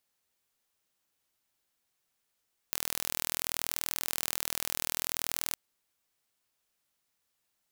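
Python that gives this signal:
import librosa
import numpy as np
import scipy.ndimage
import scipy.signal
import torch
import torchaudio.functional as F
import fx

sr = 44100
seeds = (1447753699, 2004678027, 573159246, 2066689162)

y = 10.0 ** (-4.5 / 20.0) * (np.mod(np.arange(round(2.81 * sr)), round(sr / 40.6)) == 0)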